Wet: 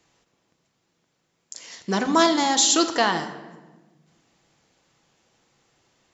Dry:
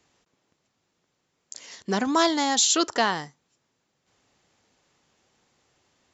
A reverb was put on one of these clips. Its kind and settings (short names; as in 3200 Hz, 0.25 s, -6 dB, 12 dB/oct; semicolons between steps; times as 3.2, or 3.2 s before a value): shoebox room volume 850 m³, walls mixed, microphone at 0.7 m; gain +1.5 dB